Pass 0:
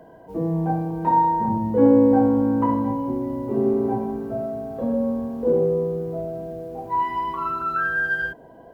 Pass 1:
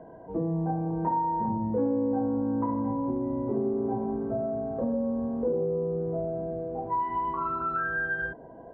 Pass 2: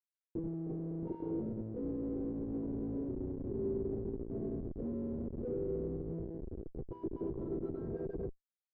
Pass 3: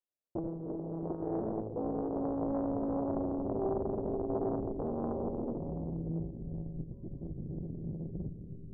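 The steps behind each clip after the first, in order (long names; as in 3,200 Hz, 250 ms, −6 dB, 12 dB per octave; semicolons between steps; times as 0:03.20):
low-pass filter 1,300 Hz 12 dB per octave; downward compressor 4 to 1, threshold −26 dBFS, peak gain reduction 13 dB
comparator with hysteresis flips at −27.5 dBFS; brickwall limiter −34.5 dBFS, peak gain reduction 11 dB; low-pass with resonance 390 Hz, resonance Q 3.5; level −5 dB
low-pass filter sweep 590 Hz → 170 Hz, 0:05.16–0:05.69; on a send at −4.5 dB: convolution reverb RT60 3.9 s, pre-delay 90 ms; on the sum: highs frequency-modulated by the lows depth 0.88 ms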